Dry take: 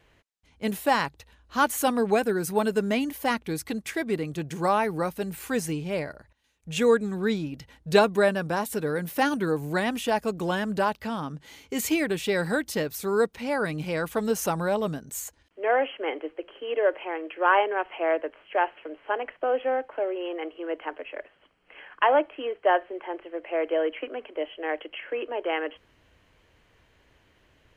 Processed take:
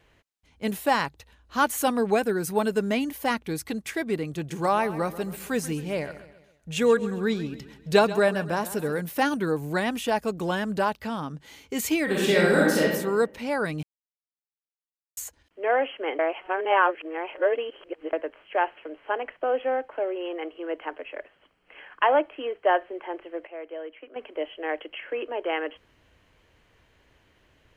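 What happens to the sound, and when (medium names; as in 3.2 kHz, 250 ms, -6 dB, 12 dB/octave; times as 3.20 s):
4.30–9.01 s: feedback delay 134 ms, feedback 47%, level -15 dB
12.04–12.81 s: reverb throw, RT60 1 s, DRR -5.5 dB
13.83–15.17 s: mute
16.19–18.13 s: reverse
23.47–24.16 s: gain -11.5 dB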